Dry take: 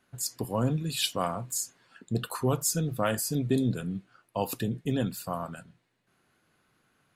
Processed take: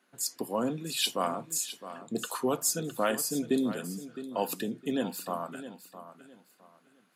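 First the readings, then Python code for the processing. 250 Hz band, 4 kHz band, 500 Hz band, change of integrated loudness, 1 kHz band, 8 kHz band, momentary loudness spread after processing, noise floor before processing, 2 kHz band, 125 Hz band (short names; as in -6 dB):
-1.5 dB, 0.0 dB, 0.0 dB, -1.0 dB, +0.5 dB, 0.0 dB, 14 LU, -72 dBFS, 0.0 dB, -13.0 dB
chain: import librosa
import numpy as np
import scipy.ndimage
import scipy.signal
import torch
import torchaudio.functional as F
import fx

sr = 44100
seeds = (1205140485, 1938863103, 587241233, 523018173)

p1 = scipy.signal.sosfilt(scipy.signal.butter(4, 210.0, 'highpass', fs=sr, output='sos'), x)
y = p1 + fx.echo_feedback(p1, sr, ms=661, feedback_pct=26, wet_db=-13, dry=0)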